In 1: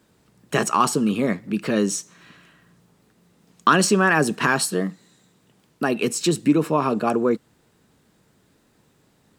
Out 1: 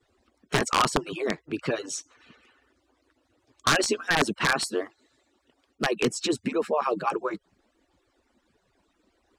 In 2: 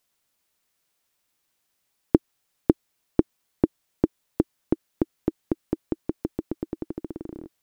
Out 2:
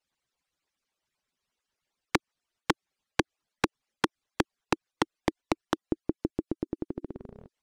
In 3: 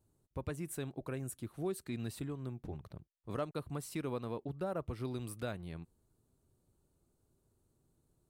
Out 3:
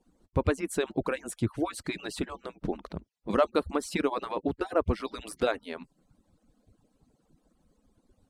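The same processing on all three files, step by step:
harmonic-percussive split with one part muted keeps percussive
wrap-around overflow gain 11 dB
high-frequency loss of the air 66 metres
normalise the peak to −12 dBFS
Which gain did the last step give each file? −0.5, −1.0, +15.0 decibels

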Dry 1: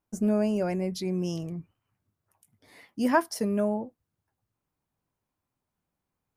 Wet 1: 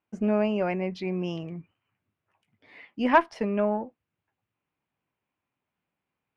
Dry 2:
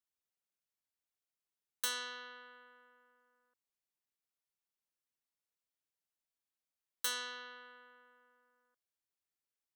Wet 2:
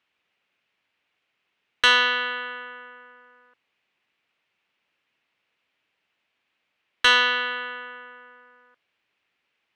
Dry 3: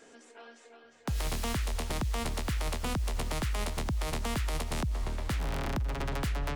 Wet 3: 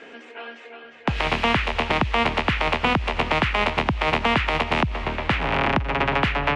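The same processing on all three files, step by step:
high-pass filter 230 Hz 6 dB per octave
dynamic equaliser 910 Hz, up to +5 dB, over −47 dBFS, Q 1.5
harmonic generator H 4 −22 dB, 6 −23 dB, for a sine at −6.5 dBFS
low-pass with resonance 2,600 Hz, resonance Q 2.5
low-shelf EQ 340 Hz +3.5 dB
normalise the peak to −6 dBFS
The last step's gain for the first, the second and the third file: −0.5, +19.5, +11.5 decibels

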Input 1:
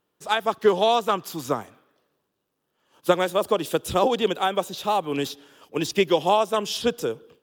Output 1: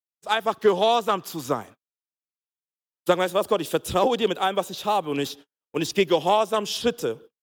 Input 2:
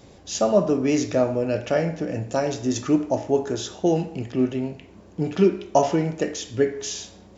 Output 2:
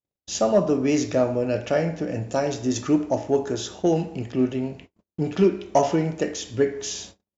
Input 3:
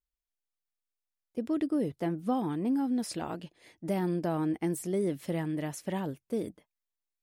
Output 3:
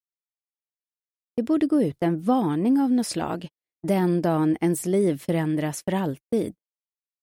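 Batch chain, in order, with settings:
noise gate −42 dBFS, range −49 dB
in parallel at −8 dB: hard clipping −13.5 dBFS
on the sum: loudness normalisation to −24 LKFS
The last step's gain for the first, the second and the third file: −3.0, −3.0, +5.5 decibels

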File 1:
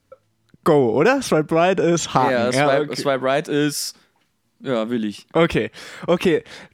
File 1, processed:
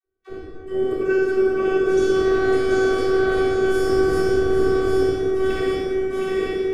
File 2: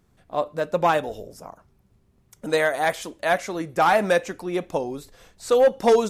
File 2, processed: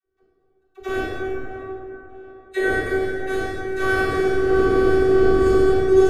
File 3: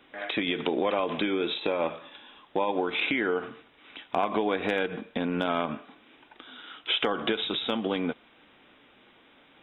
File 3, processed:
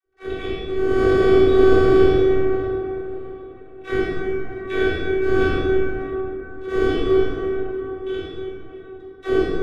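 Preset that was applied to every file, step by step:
feedback delay that plays each chunk backwards 396 ms, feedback 77%, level −6 dB
wind on the microphone 480 Hz −18 dBFS
Chebyshev band-stop filter 550–1,300 Hz, order 2
noise gate −19 dBFS, range −52 dB
low-shelf EQ 94 Hz −7.5 dB
harmonic and percussive parts rebalanced percussive −13 dB
low-shelf EQ 240 Hz +7 dB
reversed playback
downward compressor 6 to 1, threshold −21 dBFS
reversed playback
all-pass dispersion lows, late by 58 ms, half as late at 500 Hz
phases set to zero 379 Hz
tape delay 626 ms, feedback 61%, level −18.5 dB, low-pass 3,400 Hz
dense smooth reverb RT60 3.4 s, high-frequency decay 0.4×, DRR −5.5 dB
loudness normalisation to −20 LKFS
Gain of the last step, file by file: +1.5, +5.5, +7.5 decibels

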